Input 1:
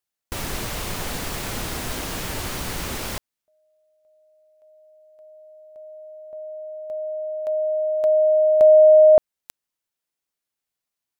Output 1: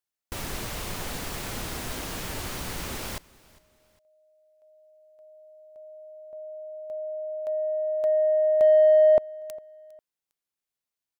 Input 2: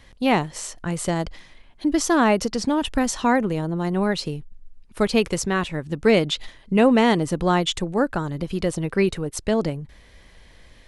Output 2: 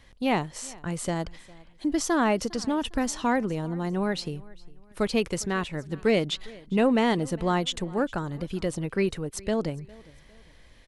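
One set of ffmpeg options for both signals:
-filter_complex "[0:a]asplit=2[s0][s1];[s1]asoftclip=type=tanh:threshold=0.2,volume=0.355[s2];[s0][s2]amix=inputs=2:normalize=0,aecho=1:1:405|810:0.0708|0.0262,volume=0.422"

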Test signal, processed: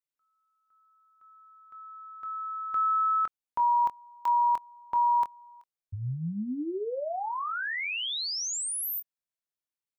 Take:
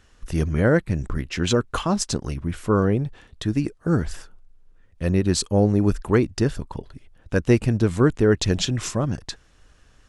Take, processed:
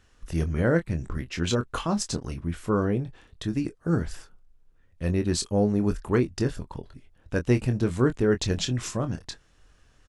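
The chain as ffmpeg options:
-filter_complex "[0:a]asplit=2[s0][s1];[s1]adelay=24,volume=0.355[s2];[s0][s2]amix=inputs=2:normalize=0,volume=0.562"

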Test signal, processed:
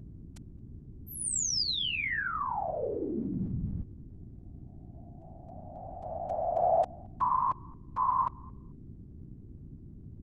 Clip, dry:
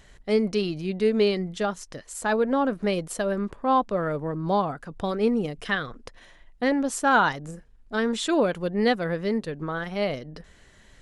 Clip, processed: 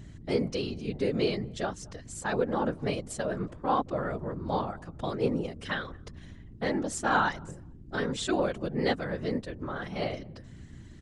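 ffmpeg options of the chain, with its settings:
-filter_complex "[0:a]lowpass=f=8800:w=0.5412,lowpass=f=8800:w=1.3066,highshelf=f=5700:g=5.5,aeval=exprs='val(0)+0.0112*(sin(2*PI*60*n/s)+sin(2*PI*2*60*n/s)/2+sin(2*PI*3*60*n/s)/3+sin(2*PI*4*60*n/s)/4+sin(2*PI*5*60*n/s)/5)':c=same,asplit=2[s0][s1];[s1]adelay=221,lowpass=f=820:p=1,volume=0.075,asplit=2[s2][s3];[s3]adelay=221,lowpass=f=820:p=1,volume=0.26[s4];[s2][s4]amix=inputs=2:normalize=0[s5];[s0][s5]amix=inputs=2:normalize=0,afftfilt=real='hypot(re,im)*cos(2*PI*random(0))':imag='hypot(re,im)*sin(2*PI*random(1))':win_size=512:overlap=0.75"

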